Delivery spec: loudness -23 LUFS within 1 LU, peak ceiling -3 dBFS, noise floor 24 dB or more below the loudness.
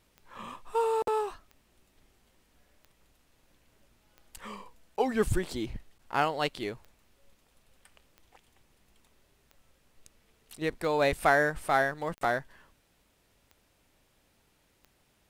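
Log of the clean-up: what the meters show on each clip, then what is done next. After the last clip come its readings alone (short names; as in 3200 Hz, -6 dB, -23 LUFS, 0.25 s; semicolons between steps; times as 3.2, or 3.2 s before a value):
clicks 12; loudness -29.5 LUFS; peak -10.0 dBFS; loudness target -23.0 LUFS
-> de-click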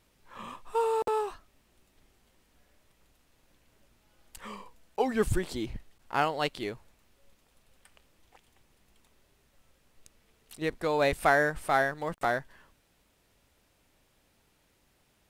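clicks 0; loudness -29.5 LUFS; peak -10.0 dBFS; loudness target -23.0 LUFS
-> gain +6.5 dB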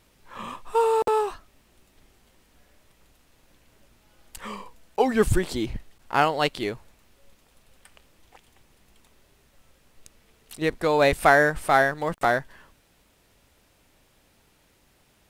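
loudness -23.0 LUFS; peak -3.5 dBFS; noise floor -63 dBFS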